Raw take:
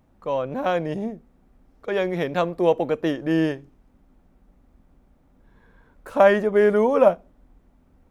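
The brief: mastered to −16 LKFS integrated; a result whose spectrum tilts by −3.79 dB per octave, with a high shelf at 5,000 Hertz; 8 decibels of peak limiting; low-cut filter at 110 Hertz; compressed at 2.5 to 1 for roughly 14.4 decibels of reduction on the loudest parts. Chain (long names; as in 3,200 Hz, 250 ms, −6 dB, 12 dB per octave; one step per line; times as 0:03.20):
high-pass filter 110 Hz
high-shelf EQ 5,000 Hz −7 dB
downward compressor 2.5 to 1, threshold −33 dBFS
level +19 dB
brickwall limiter −5.5 dBFS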